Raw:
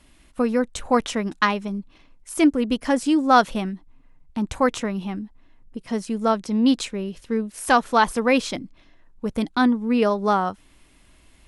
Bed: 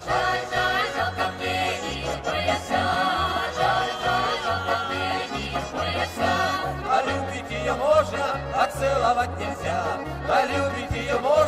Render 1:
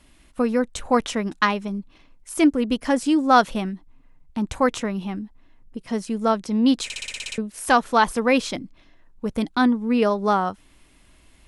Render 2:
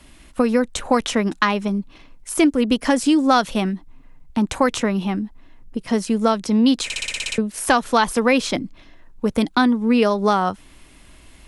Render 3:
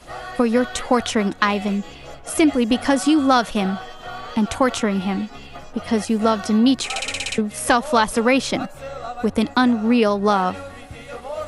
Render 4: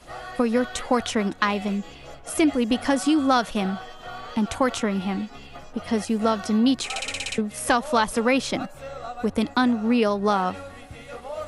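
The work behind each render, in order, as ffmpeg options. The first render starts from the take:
-filter_complex "[0:a]asplit=10[s0][s1][s2][s3][s4][s5][s6][s7][s8][s9];[s0]atrim=end=6.902[s10];[s1]atrim=start=6.838:end=6.902[s11];[s2]atrim=start=6.838:end=6.902[s12];[s3]atrim=start=6.838:end=6.902[s13];[s4]atrim=start=6.838:end=6.902[s14];[s5]atrim=start=6.838:end=6.902[s15];[s6]atrim=start=6.838:end=6.902[s16];[s7]atrim=start=6.838:end=6.902[s17];[s8]atrim=start=6.838:end=6.902[s18];[s9]atrim=start=7.378[s19];[s10][s11]acrossfade=d=0.004:c1=hsin:c2=hsin[s20];[s20][s12]acrossfade=d=0.004:c1=hsin:c2=hsin[s21];[s21][s13]acrossfade=d=0.004:c1=hsin:c2=hsin[s22];[s22][s14]acrossfade=d=0.004:c1=hsin:c2=hsin[s23];[s23][s15]acrossfade=d=0.004:c1=hsin:c2=hsin[s24];[s24][s16]acrossfade=d=0.004:c1=hsin:c2=hsin[s25];[s25][s17]acrossfade=d=0.004:c1=hsin:c2=hsin[s26];[s26][s18]acrossfade=d=0.004:c1=hsin:c2=hsin[s27];[s27][s19]acrossfade=d=0.004:c1=hsin:c2=hsin"
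-filter_complex "[0:a]acrossover=split=170|2400[s0][s1][s2];[s0]acompressor=threshold=0.01:ratio=4[s3];[s1]acompressor=threshold=0.0794:ratio=4[s4];[s2]acompressor=threshold=0.0251:ratio=4[s5];[s3][s4][s5]amix=inputs=3:normalize=0,alimiter=level_in=2.37:limit=0.891:release=50:level=0:latency=1"
-filter_complex "[1:a]volume=0.299[s0];[0:a][s0]amix=inputs=2:normalize=0"
-af "volume=0.631"

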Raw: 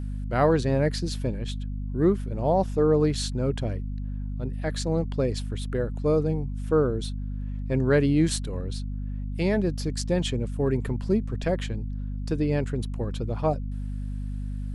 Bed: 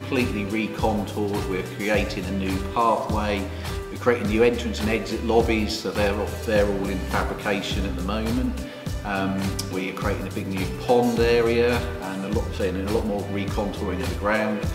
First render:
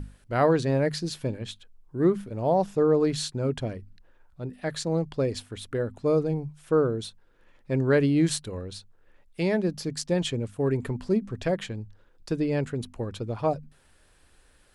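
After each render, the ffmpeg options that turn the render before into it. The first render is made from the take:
-af "bandreject=f=50:t=h:w=6,bandreject=f=100:t=h:w=6,bandreject=f=150:t=h:w=6,bandreject=f=200:t=h:w=6,bandreject=f=250:t=h:w=6"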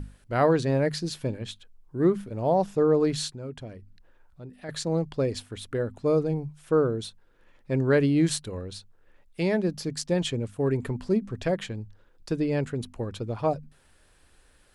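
-filter_complex "[0:a]asettb=1/sr,asplit=3[s0][s1][s2];[s0]atrim=end=3.344[s3];[s1]atrim=start=3.34:end=4.69,asetpts=PTS-STARTPTS,afade=t=in:d=0.004:c=qsin,afade=t=out:st=1.346:d=0.004:c=qsin,acompressor=threshold=0.00282:ratio=1.5:attack=3.2:release=140:knee=1:detection=peak[s4];[s2]atrim=start=4.686[s5];[s3][s4]acrossfade=d=0.004:c1=hsin:c2=qsin[s6];[s6][s5]acrossfade=d=0.004:c1=qsin:c2=hsin"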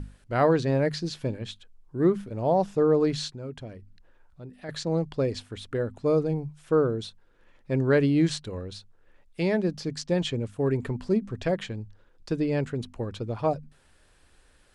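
-filter_complex "[0:a]lowpass=10000,acrossover=split=7100[s0][s1];[s1]acompressor=threshold=0.00141:ratio=4:attack=1:release=60[s2];[s0][s2]amix=inputs=2:normalize=0"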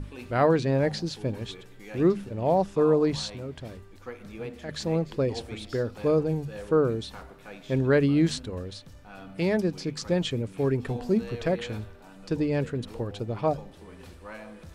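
-filter_complex "[1:a]volume=0.1[s0];[0:a][s0]amix=inputs=2:normalize=0"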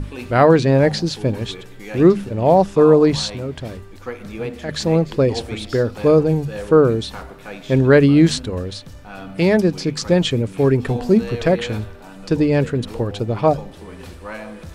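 -af "volume=3.16,alimiter=limit=0.891:level=0:latency=1"

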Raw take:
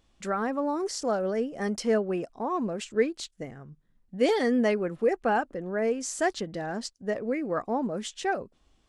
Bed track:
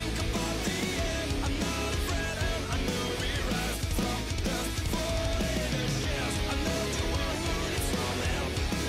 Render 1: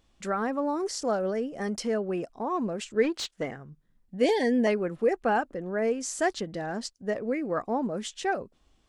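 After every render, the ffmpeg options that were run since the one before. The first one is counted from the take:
-filter_complex "[0:a]asettb=1/sr,asplit=3[s0][s1][s2];[s0]atrim=end=1.304[s3];[s1]atrim=start=1.3:end=2.47,asetpts=PTS-STARTPTS,afade=t=in:d=0.004:c=qsin,afade=t=out:st=1.166:d=0.004:c=qsin,acompressor=threshold=0.0501:ratio=2:attack=3.2:release=140:knee=1:detection=peak[s4];[s2]atrim=start=2.466[s5];[s3][s4]acrossfade=d=0.004:c1=hsin:c2=qsin[s6];[s6][s5]acrossfade=d=0.004:c1=qsin:c2=hsin,asplit=3[s7][s8][s9];[s7]afade=t=out:st=3.03:d=0.02[s10];[s8]asplit=2[s11][s12];[s12]highpass=f=720:p=1,volume=8.91,asoftclip=type=tanh:threshold=0.126[s13];[s11][s13]amix=inputs=2:normalize=0,lowpass=f=2700:p=1,volume=0.501,afade=t=in:st=3.03:d=0.02,afade=t=out:st=3.55:d=0.02[s14];[s9]afade=t=in:st=3.55:d=0.02[s15];[s10][s14][s15]amix=inputs=3:normalize=0,asettb=1/sr,asplit=3[s16][s17][s18];[s16]atrim=end=4.244[s19];[s17]atrim=start=4.24:end=4.67,asetpts=PTS-STARTPTS,afade=t=in:d=0.004:c=qsin,afade=t=out:st=0.426:d=0.004:c=qsin,asuperstop=centerf=1300:order=20:qfactor=3[s20];[s18]atrim=start=4.666[s21];[s19][s20]acrossfade=d=0.004:c1=hsin:c2=qsin[s22];[s22][s21]acrossfade=d=0.004:c1=qsin:c2=hsin"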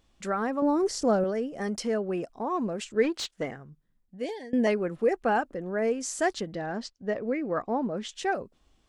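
-filter_complex "[0:a]asettb=1/sr,asplit=3[s0][s1][s2];[s0]atrim=end=0.624[s3];[s1]atrim=start=0.62:end=1.24,asetpts=PTS-STARTPTS,afade=t=in:d=0.004:c=qsin,afade=t=out:st=0.616:d=0.004:c=qsin,lowshelf=f=360:g=10.5[s4];[s2]atrim=start=1.236[s5];[s3][s4]acrossfade=d=0.004:c1=hsin:c2=qsin[s6];[s6][s5]acrossfade=d=0.004:c1=qsin:c2=hsin,asettb=1/sr,asplit=3[s7][s8][s9];[s7]atrim=end=6.544[s10];[s8]atrim=start=6.54:end=8.09,asetpts=PTS-STARTPTS,afade=t=in:d=0.004:c=qsin,afade=t=out:st=1.546:d=0.004:c=qsin,lowpass=4800[s11];[s9]atrim=start=8.086[s12];[s10][s11]acrossfade=d=0.004:c1=hsin:c2=qsin[s13];[s13][s12]acrossfade=d=0.004:c1=qsin:c2=hsin,asplit=2[s14][s15];[s14]atrim=end=4.53,asetpts=PTS-STARTPTS,afade=t=out:st=3.44:d=1.09:silence=0.0841395[s16];[s15]atrim=start=4.53,asetpts=PTS-STARTPTS,afade=t=in:d=0.004:c=hsin:silence=0.0841395[s17];[s16][s17]concat=n=2:v=0:a=1"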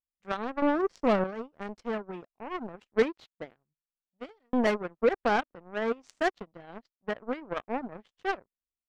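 -af "aeval=exprs='0.237*(cos(1*acos(clip(val(0)/0.237,-1,1)))-cos(1*PI/2))+0.0335*(cos(7*acos(clip(val(0)/0.237,-1,1)))-cos(7*PI/2))':c=same,adynamicsmooth=sensitivity=1.5:basefreq=3100"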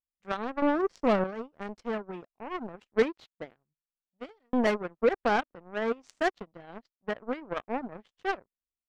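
-af anull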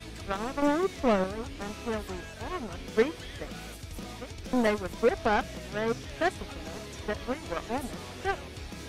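-filter_complex "[1:a]volume=0.282[s0];[0:a][s0]amix=inputs=2:normalize=0"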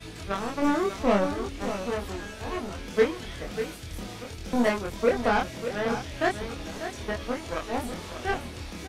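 -filter_complex "[0:a]asplit=2[s0][s1];[s1]adelay=25,volume=0.794[s2];[s0][s2]amix=inputs=2:normalize=0,asplit=2[s3][s4];[s4]aecho=0:1:593:0.316[s5];[s3][s5]amix=inputs=2:normalize=0"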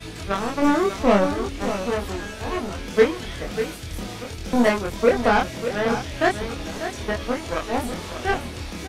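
-af "volume=1.88"

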